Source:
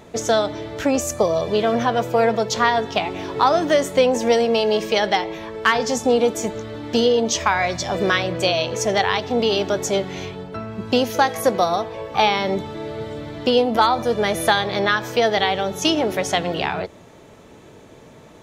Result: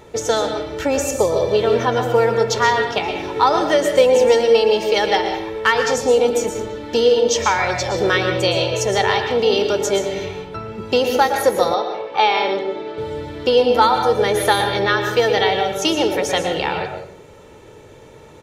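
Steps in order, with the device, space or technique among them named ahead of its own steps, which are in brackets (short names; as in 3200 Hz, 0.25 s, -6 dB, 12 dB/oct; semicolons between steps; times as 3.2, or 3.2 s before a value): microphone above a desk (comb 2.2 ms, depth 50%; reverb RT60 0.60 s, pre-delay 0.109 s, DRR 5 dB); 11.74–12.98 three-band isolator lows -24 dB, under 220 Hz, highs -20 dB, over 5800 Hz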